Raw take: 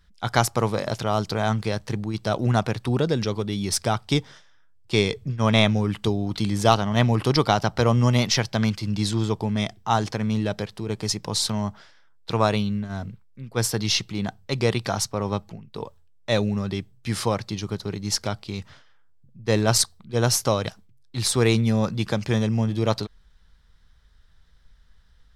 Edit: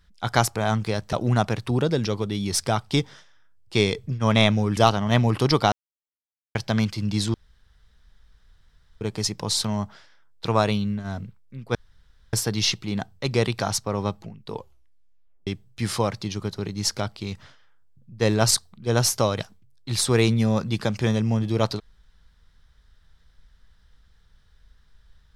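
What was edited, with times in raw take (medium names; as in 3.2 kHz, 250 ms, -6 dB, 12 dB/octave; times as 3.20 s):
0.56–1.34 s: delete
1.91–2.31 s: delete
5.95–6.62 s: delete
7.57–8.40 s: mute
9.19–10.86 s: room tone
13.60 s: insert room tone 0.58 s
15.82 s: tape stop 0.92 s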